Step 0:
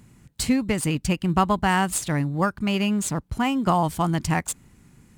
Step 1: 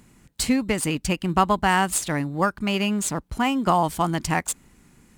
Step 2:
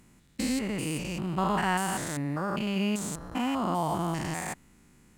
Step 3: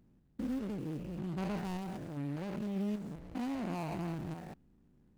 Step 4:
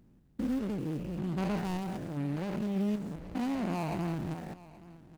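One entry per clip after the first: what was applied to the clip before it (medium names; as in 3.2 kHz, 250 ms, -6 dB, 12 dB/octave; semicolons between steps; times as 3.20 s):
peaking EQ 110 Hz -9 dB 1.4 oct; trim +2 dB
spectrogram pixelated in time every 200 ms; trim -3 dB
median filter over 41 samples; trim -6 dB
delay 825 ms -19 dB; trim +4.5 dB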